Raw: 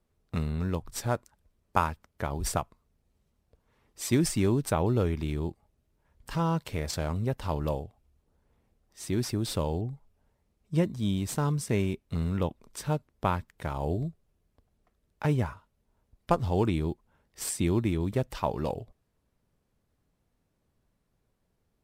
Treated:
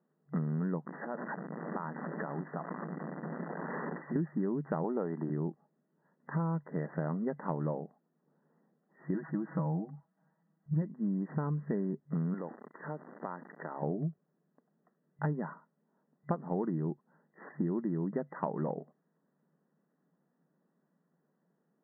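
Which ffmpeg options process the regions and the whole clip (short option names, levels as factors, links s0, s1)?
-filter_complex "[0:a]asettb=1/sr,asplit=3[s0][s1][s2];[s0]atrim=end=0.854[s3];[s1]atrim=start=0.85:end=4.16,asetpts=PTS-STARTPTS,afade=t=in:d=0.004:c=qsin,afade=t=out:st=3.306:d=0.004:c=qsin,aeval=exprs='val(0)+0.5*0.0316*sgn(val(0))':c=same,acompressor=threshold=0.0251:ratio=10:attack=3.2:release=140:knee=1:detection=peak,bandreject=f=50:t=h:w=6,bandreject=f=100:t=h:w=6,bandreject=f=150:t=h:w=6,bandreject=f=200:t=h:w=6,bandreject=f=250:t=h:w=6,bandreject=f=300:t=h:w=6,bandreject=f=350:t=h:w=6[s4];[s2]atrim=start=4.156[s5];[s3][s4]acrossfade=d=0.004:c1=hsin:c2=qsin[s6];[s6][s5]acrossfade=d=0.004:c1=qsin:c2=hsin,asettb=1/sr,asplit=3[s7][s8][s9];[s7]atrim=end=4.844[s10];[s8]atrim=start=4.84:end=5.3,asetpts=PTS-STARTPTS,afade=t=in:d=0.004:c=qsin,afade=t=out:st=0.456:d=0.004:c=qsin,highpass=190,equalizer=f=790:w=1.5:g=7[s11];[s9]atrim=start=5.296[s12];[s10][s11]acrossfade=d=0.004:c1=hsin:c2=qsin[s13];[s13][s12]acrossfade=d=0.004:c1=qsin:c2=hsin,asettb=1/sr,asplit=3[s14][s15][s16];[s14]atrim=end=9.144[s17];[s15]atrim=start=9.14:end=10.82,asetpts=PTS-STARTPTS,afade=t=in:d=0.004:c=qsin,afade=t=out:st=1.676:d=0.004:c=qsin,equalizer=f=410:t=o:w=0.74:g=-10.5,aecho=1:1:6.2:0.79,atrim=end_sample=74088[s18];[s16]atrim=start=10.816[s19];[s17][s18]acrossfade=d=0.004:c1=hsin:c2=qsin[s20];[s20][s19]acrossfade=d=0.004:c1=qsin:c2=hsin,asettb=1/sr,asplit=3[s21][s22][s23];[s21]atrim=end=12.344[s24];[s22]atrim=start=12.34:end=13.83,asetpts=PTS-STARTPTS,afade=t=in:d=0.004:c=qsin,afade=t=out:st=1.486:d=0.004:c=qsin,aeval=exprs='val(0)+0.5*0.00944*sgn(val(0))':c=same,highpass=270,acompressor=threshold=0.0126:ratio=3:attack=3.2:release=140:knee=1:detection=peak[s25];[s23]atrim=start=13.826[s26];[s24][s25]acrossfade=d=0.004:c1=hsin:c2=qsin[s27];[s27][s26]acrossfade=d=0.004:c1=qsin:c2=hsin,afftfilt=real='re*between(b*sr/4096,140,2000)':imag='im*between(b*sr/4096,140,2000)':win_size=4096:overlap=0.75,lowshelf=f=180:g=9,acompressor=threshold=0.0316:ratio=5"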